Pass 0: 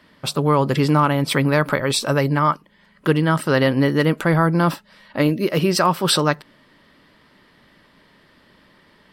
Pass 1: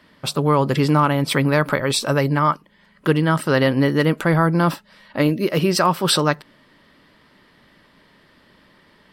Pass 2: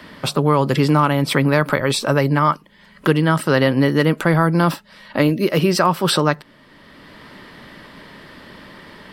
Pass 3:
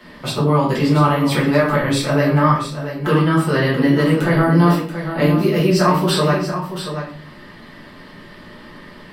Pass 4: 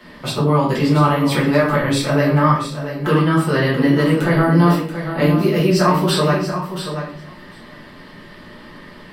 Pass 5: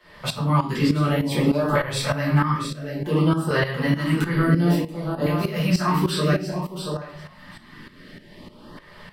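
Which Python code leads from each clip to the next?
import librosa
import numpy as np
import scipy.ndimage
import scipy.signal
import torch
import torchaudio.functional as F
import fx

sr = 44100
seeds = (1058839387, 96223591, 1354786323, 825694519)

y1 = x
y2 = fx.band_squash(y1, sr, depth_pct=40)
y2 = F.gain(torch.from_numpy(y2), 1.5).numpy()
y3 = y2 + 10.0 ** (-9.5 / 20.0) * np.pad(y2, (int(682 * sr / 1000.0), 0))[:len(y2)]
y3 = fx.room_shoebox(y3, sr, seeds[0], volume_m3=53.0, walls='mixed', distance_m=1.5)
y3 = F.gain(torch.from_numpy(y3), -8.5).numpy()
y4 = y3 + 10.0 ** (-21.0 / 20.0) * np.pad(y3, (int(747 * sr / 1000.0), 0))[:len(y3)]
y5 = fx.tremolo_shape(y4, sr, shape='saw_up', hz=3.3, depth_pct=75)
y5 = fx.filter_lfo_notch(y5, sr, shape='saw_up', hz=0.57, low_hz=210.0, high_hz=2400.0, q=0.96)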